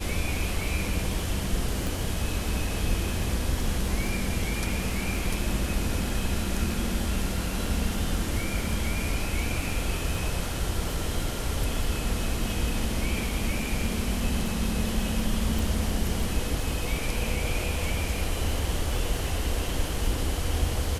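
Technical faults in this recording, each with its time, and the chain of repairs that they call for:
crackle 20 per s -33 dBFS
1.87 s: pop
15.59 s: pop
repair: de-click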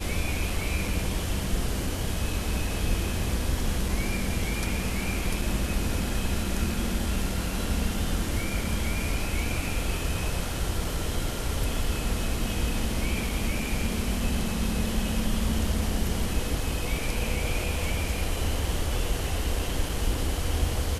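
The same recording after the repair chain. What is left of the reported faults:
nothing left

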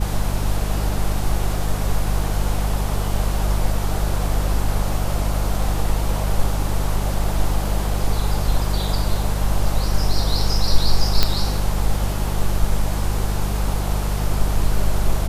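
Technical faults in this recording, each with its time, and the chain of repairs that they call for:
hum 50 Hz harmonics 4 -22 dBFS
11.23 s: pop -1 dBFS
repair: de-click; de-hum 50 Hz, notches 4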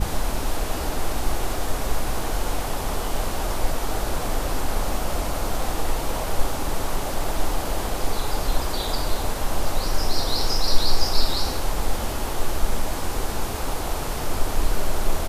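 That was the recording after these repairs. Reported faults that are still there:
nothing left

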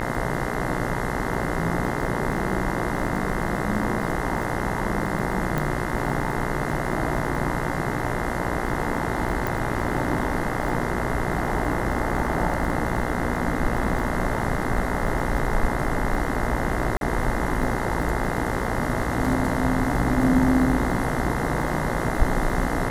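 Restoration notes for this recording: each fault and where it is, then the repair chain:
buzz 60 Hz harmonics 35 -29 dBFS
crackle 28 per s -31 dBFS
5.58 s: pop
9.47 s: pop
16.97–17.01 s: dropout 42 ms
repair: de-click; de-hum 60 Hz, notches 35; interpolate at 16.97 s, 42 ms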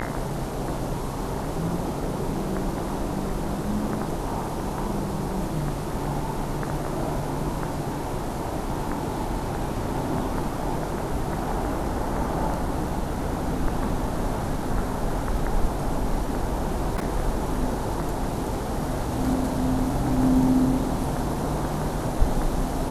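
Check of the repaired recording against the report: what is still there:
5.58 s: pop

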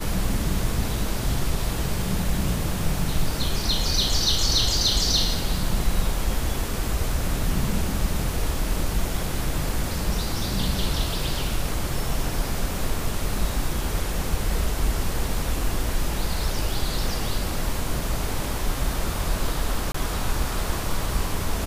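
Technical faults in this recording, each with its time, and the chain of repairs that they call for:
19.92–19.94 s: dropout 24 ms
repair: interpolate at 19.92 s, 24 ms

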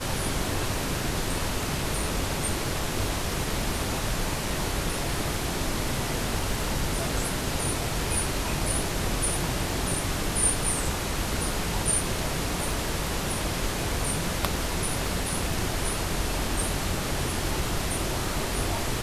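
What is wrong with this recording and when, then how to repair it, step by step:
crackle 36 per s -35 dBFS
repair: de-click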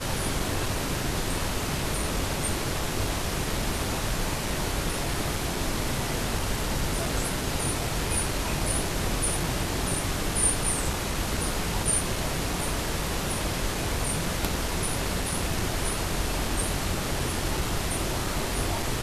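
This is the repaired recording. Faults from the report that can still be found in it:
nothing left

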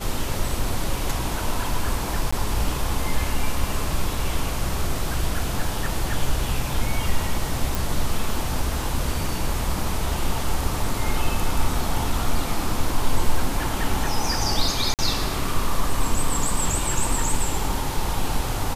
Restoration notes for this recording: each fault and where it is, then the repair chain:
2.31–2.33 s: dropout 15 ms
7.75 s: pop
14.94–14.99 s: dropout 48 ms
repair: de-click; interpolate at 2.31 s, 15 ms; interpolate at 14.94 s, 48 ms

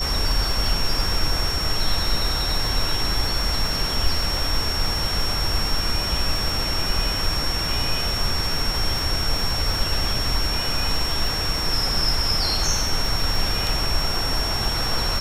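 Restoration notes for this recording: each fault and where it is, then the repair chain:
crackle 28 per s -27 dBFS
whine 5.5 kHz -25 dBFS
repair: de-click; band-stop 5.5 kHz, Q 30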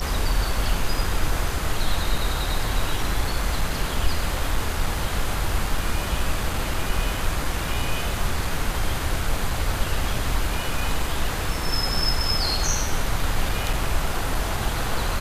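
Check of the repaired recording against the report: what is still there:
nothing left

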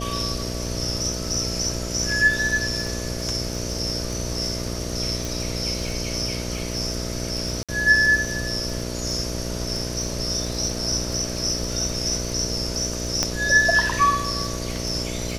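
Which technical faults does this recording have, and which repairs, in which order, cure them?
buzz 60 Hz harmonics 11 -30 dBFS
crackle 22 per s -29 dBFS
5.25 s: pop
7.63–7.69 s: dropout 56 ms
13.23 s: pop -7 dBFS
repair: de-click; de-hum 60 Hz, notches 11; interpolate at 7.63 s, 56 ms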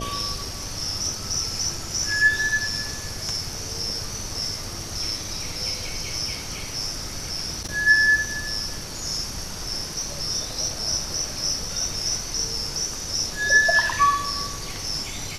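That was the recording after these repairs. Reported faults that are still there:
nothing left

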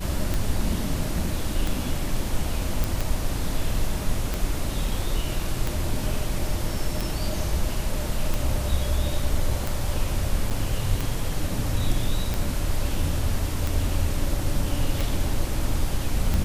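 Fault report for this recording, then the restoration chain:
tick 45 rpm
2.84 s: pop
10.50–10.51 s: dropout 6.8 ms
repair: de-click; interpolate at 10.50 s, 6.8 ms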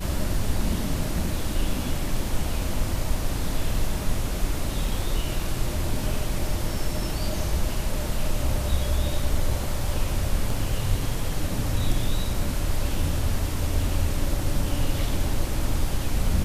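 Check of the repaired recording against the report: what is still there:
nothing left

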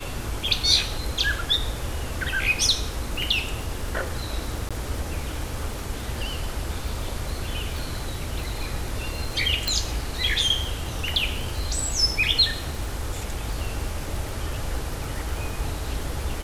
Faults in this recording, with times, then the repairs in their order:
crackle 58 per s -31 dBFS
4.69–4.71 s: dropout 16 ms
9.68 s: pop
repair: de-click; interpolate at 4.69 s, 16 ms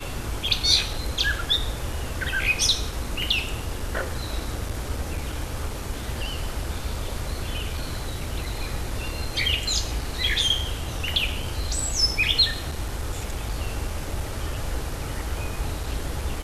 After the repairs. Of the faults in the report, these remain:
9.68 s: pop

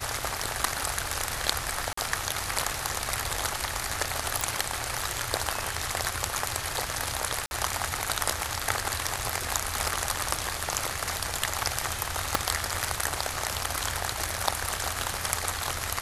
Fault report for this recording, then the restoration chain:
1.93–1.97 s: dropout 44 ms
4.41 s: pop
7.46–7.51 s: dropout 51 ms
12.35 s: pop -5 dBFS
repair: de-click; interpolate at 1.93 s, 44 ms; interpolate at 7.46 s, 51 ms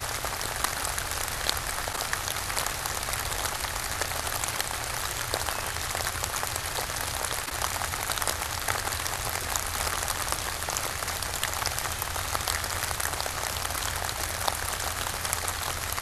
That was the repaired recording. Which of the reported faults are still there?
12.35 s: pop

